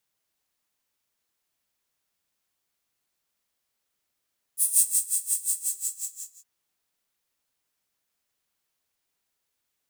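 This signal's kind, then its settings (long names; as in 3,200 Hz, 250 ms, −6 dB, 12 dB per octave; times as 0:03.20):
subtractive patch with tremolo F#4, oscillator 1 square, oscillator 2 square, interval −12 semitones, noise −0.5 dB, filter highpass, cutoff 7,100 Hz, Q 7, filter envelope 0.5 octaves, filter sustain 50%, attack 103 ms, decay 0.37 s, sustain −9 dB, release 0.95 s, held 0.92 s, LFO 5.6 Hz, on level 19.5 dB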